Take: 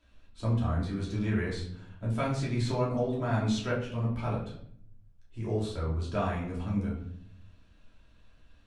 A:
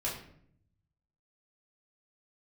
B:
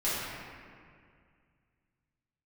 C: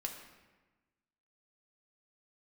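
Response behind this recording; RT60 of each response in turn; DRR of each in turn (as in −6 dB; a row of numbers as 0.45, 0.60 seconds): A; 0.65, 2.1, 1.2 seconds; −6.5, −12.0, 1.5 decibels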